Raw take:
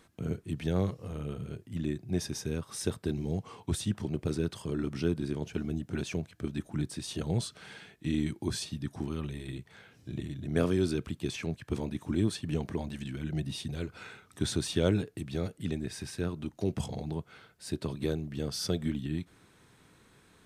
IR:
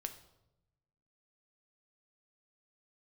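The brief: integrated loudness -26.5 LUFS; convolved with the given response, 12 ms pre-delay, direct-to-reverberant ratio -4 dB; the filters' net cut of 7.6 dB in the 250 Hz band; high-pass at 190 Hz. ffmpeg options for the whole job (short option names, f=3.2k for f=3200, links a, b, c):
-filter_complex "[0:a]highpass=190,equalizer=f=250:t=o:g=-8.5,asplit=2[a][b];[1:a]atrim=start_sample=2205,adelay=12[c];[b][c]afir=irnorm=-1:irlink=0,volume=6dB[d];[a][d]amix=inputs=2:normalize=0,volume=7.5dB"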